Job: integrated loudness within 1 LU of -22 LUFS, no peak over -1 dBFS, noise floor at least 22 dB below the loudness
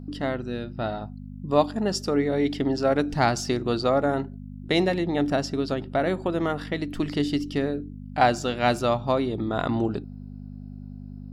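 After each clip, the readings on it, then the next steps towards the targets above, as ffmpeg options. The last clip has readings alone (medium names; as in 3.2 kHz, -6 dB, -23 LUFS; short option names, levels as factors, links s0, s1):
hum 50 Hz; highest harmonic 250 Hz; hum level -37 dBFS; loudness -25.5 LUFS; peak level -5.5 dBFS; loudness target -22.0 LUFS
-> -af "bandreject=f=50:t=h:w=4,bandreject=f=100:t=h:w=4,bandreject=f=150:t=h:w=4,bandreject=f=200:t=h:w=4,bandreject=f=250:t=h:w=4"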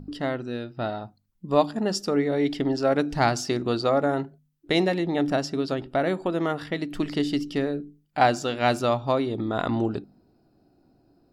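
hum not found; loudness -25.5 LUFS; peak level -5.5 dBFS; loudness target -22.0 LUFS
-> -af "volume=1.5"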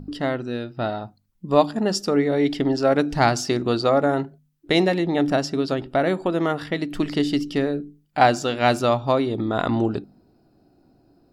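loudness -22.0 LUFS; peak level -2.0 dBFS; noise floor -62 dBFS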